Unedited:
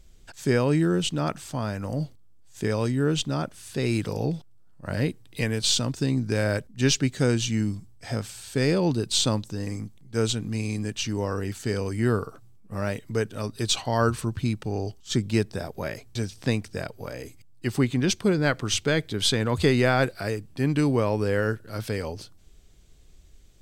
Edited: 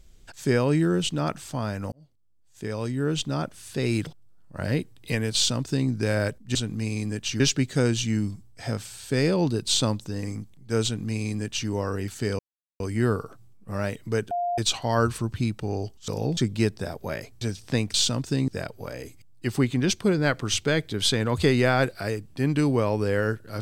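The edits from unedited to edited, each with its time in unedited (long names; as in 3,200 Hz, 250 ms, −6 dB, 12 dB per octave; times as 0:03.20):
0:01.92–0:03.41: fade in
0:04.07–0:04.36: move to 0:15.11
0:05.64–0:06.18: duplicate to 0:16.68
0:10.28–0:11.13: duplicate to 0:06.84
0:11.83: splice in silence 0.41 s
0:13.34–0:13.61: beep over 702 Hz −23.5 dBFS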